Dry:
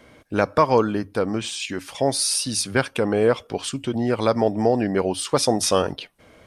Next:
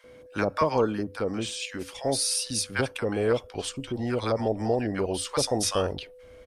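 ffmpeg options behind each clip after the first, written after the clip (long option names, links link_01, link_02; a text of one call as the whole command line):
ffmpeg -i in.wav -filter_complex "[0:a]asubboost=boost=5.5:cutoff=70,aeval=exprs='val(0)+0.00708*sin(2*PI*500*n/s)':channel_layout=same,acrossover=split=860[link_01][link_02];[link_01]adelay=40[link_03];[link_03][link_02]amix=inputs=2:normalize=0,volume=-4.5dB" out.wav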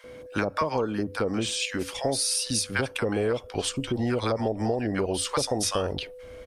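ffmpeg -i in.wav -af "acompressor=threshold=-29dB:ratio=6,volume=6dB" out.wav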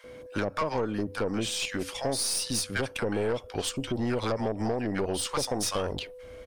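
ffmpeg -i in.wav -af "aeval=exprs='(tanh(11.2*val(0)+0.45)-tanh(0.45))/11.2':channel_layout=same" out.wav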